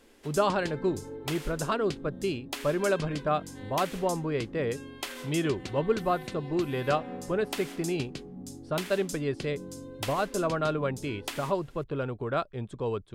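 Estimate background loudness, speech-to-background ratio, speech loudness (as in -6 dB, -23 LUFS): -40.0 LUFS, 9.0 dB, -31.0 LUFS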